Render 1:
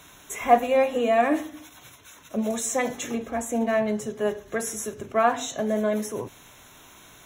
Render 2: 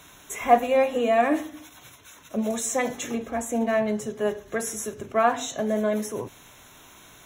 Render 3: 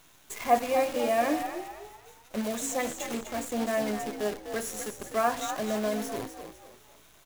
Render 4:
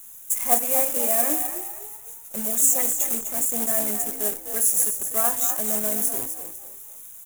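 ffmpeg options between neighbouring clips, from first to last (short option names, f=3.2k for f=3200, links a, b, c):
-af anull
-filter_complex "[0:a]acrusher=bits=6:dc=4:mix=0:aa=0.000001,asplit=5[a][b][c][d][e];[b]adelay=251,afreqshift=54,volume=-9dB[f];[c]adelay=502,afreqshift=108,volume=-17.9dB[g];[d]adelay=753,afreqshift=162,volume=-26.7dB[h];[e]adelay=1004,afreqshift=216,volume=-35.6dB[i];[a][f][g][h][i]amix=inputs=5:normalize=0,volume=-5.5dB"
-af "acrusher=bits=3:mode=log:mix=0:aa=0.000001,aexciter=amount=11.2:drive=5.8:freq=6.8k,volume=-2.5dB"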